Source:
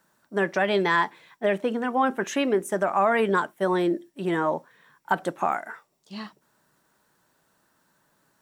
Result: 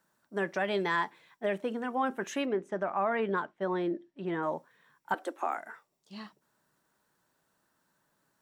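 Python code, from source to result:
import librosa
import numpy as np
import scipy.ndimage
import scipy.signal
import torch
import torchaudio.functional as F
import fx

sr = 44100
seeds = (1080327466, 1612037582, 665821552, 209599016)

y = fx.air_absorb(x, sr, metres=170.0, at=(2.45, 4.43))
y = fx.steep_highpass(y, sr, hz=240.0, slope=96, at=(5.14, 5.57))
y = y * librosa.db_to_amplitude(-7.5)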